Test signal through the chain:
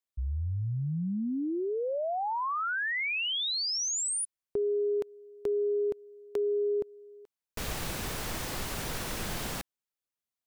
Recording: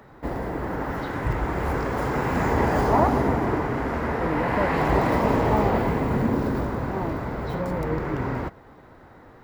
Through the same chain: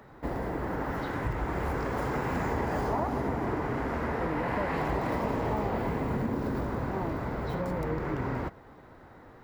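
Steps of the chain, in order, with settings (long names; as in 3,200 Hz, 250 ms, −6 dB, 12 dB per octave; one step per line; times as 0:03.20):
downward compressor 4 to 1, threshold −24 dBFS
level −3 dB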